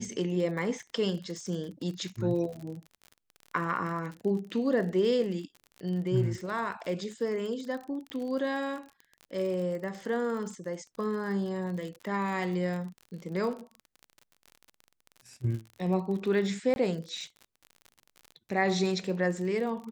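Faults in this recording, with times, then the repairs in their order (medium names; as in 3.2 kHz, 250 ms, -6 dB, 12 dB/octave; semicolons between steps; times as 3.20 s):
crackle 42 per s -37 dBFS
8.10 s: pop -24 dBFS
16.74–16.76 s: dropout 21 ms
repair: de-click; interpolate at 16.74 s, 21 ms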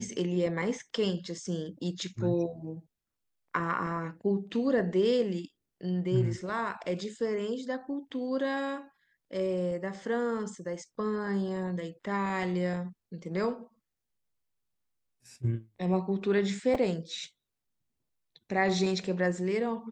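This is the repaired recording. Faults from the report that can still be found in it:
nothing left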